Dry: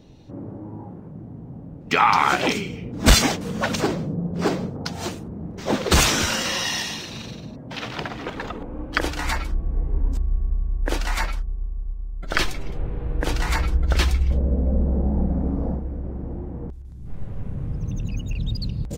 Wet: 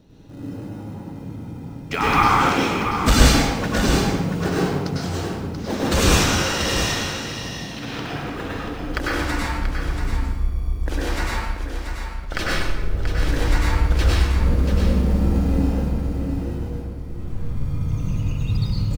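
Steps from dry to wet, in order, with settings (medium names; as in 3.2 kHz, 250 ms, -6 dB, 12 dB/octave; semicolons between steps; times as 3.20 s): in parallel at -8 dB: sample-and-hold 39×; on the sum: delay 684 ms -8 dB; reverberation RT60 1.2 s, pre-delay 94 ms, DRR -6 dB; trim -6.5 dB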